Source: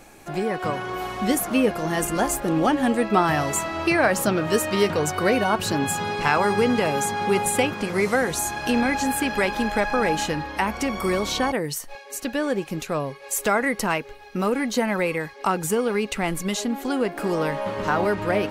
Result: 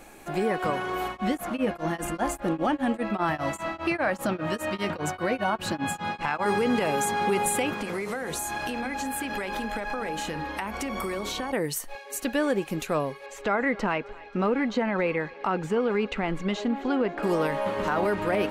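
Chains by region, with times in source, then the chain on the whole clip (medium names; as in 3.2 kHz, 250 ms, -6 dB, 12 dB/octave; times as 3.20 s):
1.08–6.46 s: treble shelf 6.4 kHz -10.5 dB + band-stop 420 Hz, Q 5.2 + tremolo of two beating tones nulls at 5 Hz
7.79–11.53 s: hum notches 60/120/180/240/300/360/420/480/540 Hz + compression 16:1, threshold -26 dBFS
13.26–17.23 s: distance through air 190 m + thinning echo 267 ms, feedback 59%, level -23.5 dB
whole clip: peaking EQ 5.3 kHz -4.5 dB 0.66 oct; peak limiter -15.5 dBFS; peaking EQ 110 Hz -7 dB 0.79 oct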